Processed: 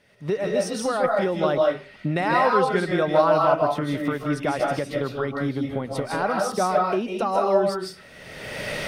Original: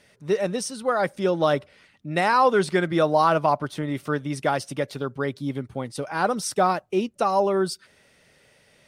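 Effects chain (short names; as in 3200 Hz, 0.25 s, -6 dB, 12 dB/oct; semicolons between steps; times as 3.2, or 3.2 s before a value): recorder AGC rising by 31 dB/s; bell 8100 Hz -8 dB 1.5 oct; reverb RT60 0.35 s, pre-delay 0.115 s, DRR -1 dB; gain -3 dB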